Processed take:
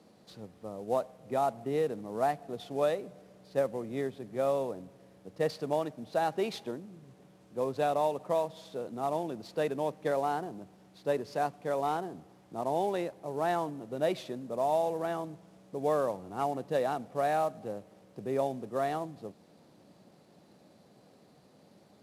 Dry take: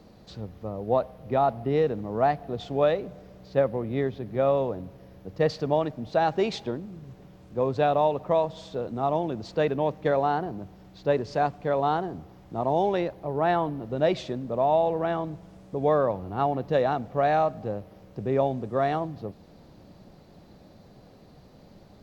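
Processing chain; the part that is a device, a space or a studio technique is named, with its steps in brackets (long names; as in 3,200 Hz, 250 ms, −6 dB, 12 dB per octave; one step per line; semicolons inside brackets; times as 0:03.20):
early wireless headset (high-pass filter 170 Hz 12 dB per octave; variable-slope delta modulation 64 kbit/s)
level −6 dB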